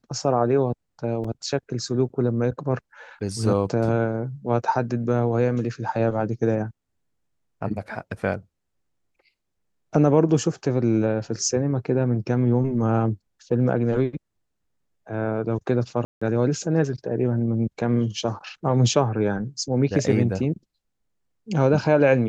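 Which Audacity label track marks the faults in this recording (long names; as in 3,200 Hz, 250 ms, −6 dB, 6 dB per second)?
1.240000	1.240000	drop-out 4.7 ms
16.050000	16.210000	drop-out 165 ms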